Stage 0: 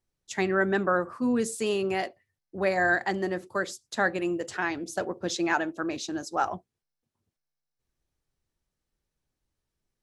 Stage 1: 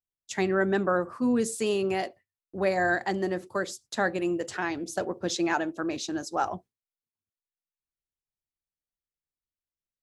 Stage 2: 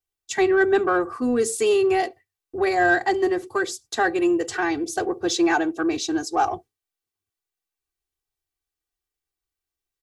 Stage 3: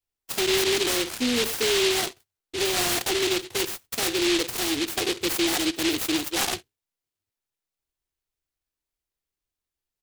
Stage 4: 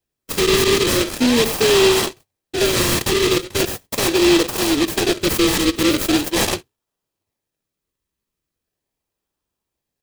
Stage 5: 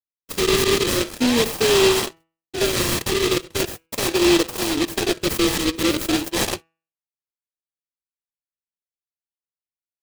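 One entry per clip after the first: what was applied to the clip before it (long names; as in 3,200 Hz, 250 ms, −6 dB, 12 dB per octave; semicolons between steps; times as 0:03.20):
noise gate with hold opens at −47 dBFS; dynamic equaliser 1,700 Hz, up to −4 dB, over −36 dBFS, Q 0.81; level +1 dB
comb filter 2.6 ms, depth 99%; in parallel at −8 dB: soft clipping −22.5 dBFS, distortion −12 dB; on the sum: level +1 dB
brickwall limiter −17.5 dBFS, peak gain reduction 8.5 dB; short delay modulated by noise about 3,100 Hz, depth 0.3 ms
notch comb filter 720 Hz; in parallel at −3.5 dB: sample-and-hold swept by an LFO 37×, swing 100% 0.4 Hz; on the sum: level +6 dB
hum removal 163.6 Hz, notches 18; power curve on the samples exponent 1.4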